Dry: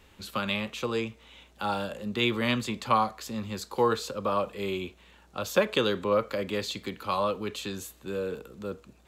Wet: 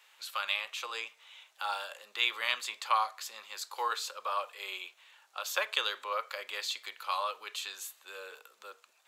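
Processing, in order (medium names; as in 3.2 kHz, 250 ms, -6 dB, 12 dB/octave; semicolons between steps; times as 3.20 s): Bessel high-pass 1.1 kHz, order 4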